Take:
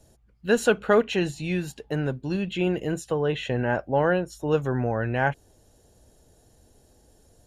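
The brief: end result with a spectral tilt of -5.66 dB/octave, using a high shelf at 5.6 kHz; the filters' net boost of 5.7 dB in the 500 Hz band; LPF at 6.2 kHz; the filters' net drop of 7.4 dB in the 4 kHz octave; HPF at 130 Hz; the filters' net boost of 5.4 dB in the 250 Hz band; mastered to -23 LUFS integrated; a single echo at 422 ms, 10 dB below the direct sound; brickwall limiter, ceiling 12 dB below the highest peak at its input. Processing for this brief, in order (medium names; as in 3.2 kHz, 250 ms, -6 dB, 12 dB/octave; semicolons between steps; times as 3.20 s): high-pass 130 Hz; low-pass 6.2 kHz; peaking EQ 250 Hz +6.5 dB; peaking EQ 500 Hz +5 dB; peaking EQ 4 kHz -8.5 dB; treble shelf 5.6 kHz -6.5 dB; peak limiter -15 dBFS; delay 422 ms -10 dB; trim +2.5 dB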